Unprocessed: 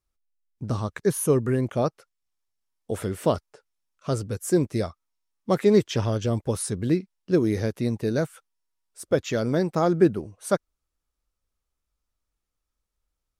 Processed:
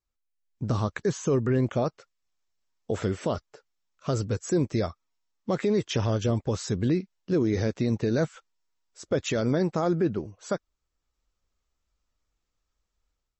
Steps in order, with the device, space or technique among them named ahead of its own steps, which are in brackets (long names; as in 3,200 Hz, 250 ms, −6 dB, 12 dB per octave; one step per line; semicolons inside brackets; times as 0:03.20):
low-bitrate web radio (automatic gain control gain up to 8.5 dB; brickwall limiter −11 dBFS, peak gain reduction 9 dB; level −5 dB; MP3 32 kbit/s 32,000 Hz)